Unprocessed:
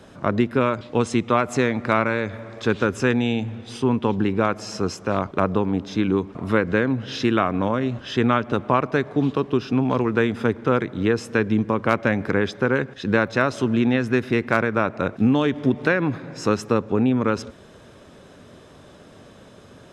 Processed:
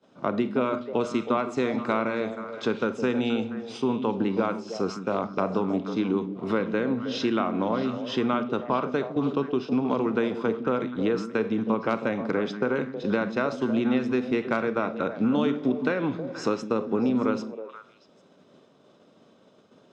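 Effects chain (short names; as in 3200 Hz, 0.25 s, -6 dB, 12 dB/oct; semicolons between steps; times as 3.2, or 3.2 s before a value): three-band isolator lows -24 dB, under 150 Hz, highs -23 dB, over 6900 Hz; Schroeder reverb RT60 0.49 s, combs from 28 ms, DRR 12 dB; compressor 2:1, threshold -41 dBFS, peak gain reduction 15 dB; expander -35 dBFS; bell 2000 Hz -4 dB 0.94 oct; notch 1700 Hz, Q 10; on a send: delay with a stepping band-pass 0.159 s, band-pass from 200 Hz, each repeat 1.4 oct, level -4.5 dB; on the sum: gain +8.5 dB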